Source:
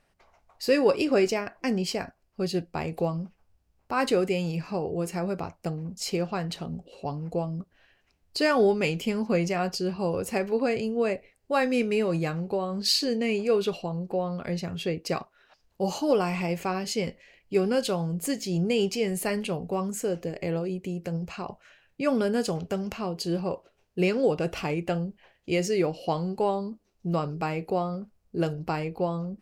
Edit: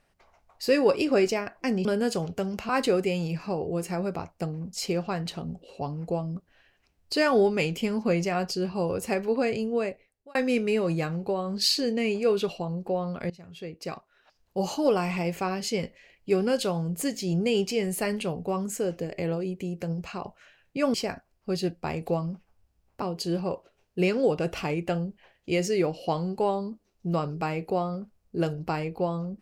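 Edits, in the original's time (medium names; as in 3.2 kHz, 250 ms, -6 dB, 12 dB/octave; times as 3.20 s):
1.85–3.93 s: swap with 22.18–23.02 s
10.92–11.59 s: fade out
14.54–15.91 s: fade in, from -19 dB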